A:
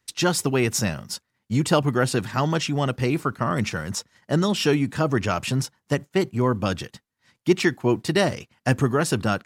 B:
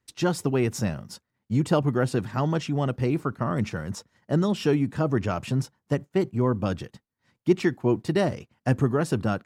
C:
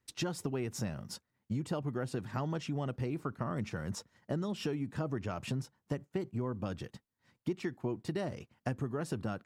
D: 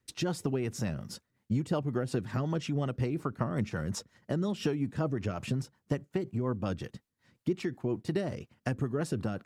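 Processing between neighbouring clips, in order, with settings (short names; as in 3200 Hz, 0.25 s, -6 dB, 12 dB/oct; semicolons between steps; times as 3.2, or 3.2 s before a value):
tilt shelf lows +5 dB, about 1300 Hz; gain -6 dB
compressor 6:1, threshold -30 dBFS, peak gain reduction 15 dB; gain -2.5 dB
rotary speaker horn 5.5 Hz; gain +6 dB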